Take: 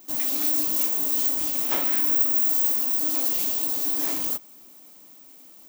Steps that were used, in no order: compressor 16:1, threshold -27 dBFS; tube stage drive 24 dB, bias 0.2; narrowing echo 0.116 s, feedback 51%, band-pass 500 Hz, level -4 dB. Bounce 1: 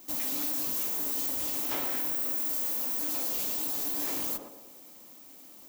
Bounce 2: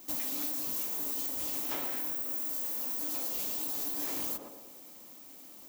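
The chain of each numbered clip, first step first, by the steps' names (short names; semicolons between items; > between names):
narrowing echo > tube stage > compressor; narrowing echo > compressor > tube stage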